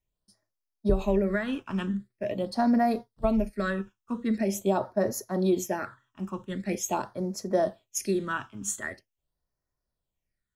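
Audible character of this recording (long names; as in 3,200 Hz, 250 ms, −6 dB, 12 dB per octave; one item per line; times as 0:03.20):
phaser sweep stages 8, 0.44 Hz, lowest notch 580–3,000 Hz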